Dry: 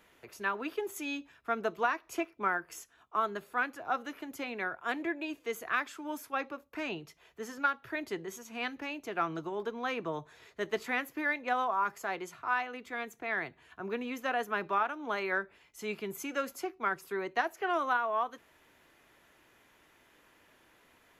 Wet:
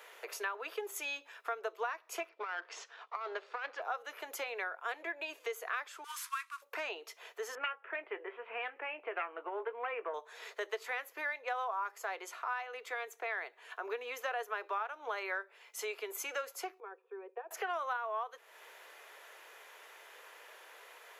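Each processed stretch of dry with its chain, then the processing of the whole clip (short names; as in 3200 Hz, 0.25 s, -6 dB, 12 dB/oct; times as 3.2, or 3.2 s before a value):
2.29–3.82 half-wave gain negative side -7 dB + LPF 5200 Hz 24 dB/oct + negative-ratio compressor -38 dBFS
6.04–6.62 CVSD 64 kbps + brick-wall FIR high-pass 940 Hz
7.55–10.14 self-modulated delay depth 0.24 ms + steep low-pass 2800 Hz 48 dB/oct + doubler 20 ms -12.5 dB
16.8–17.51 vocal tract filter e + fixed phaser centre 390 Hz, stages 8
whole clip: elliptic high-pass 440 Hz, stop band 70 dB; compressor 3:1, threshold -50 dBFS; gain +10 dB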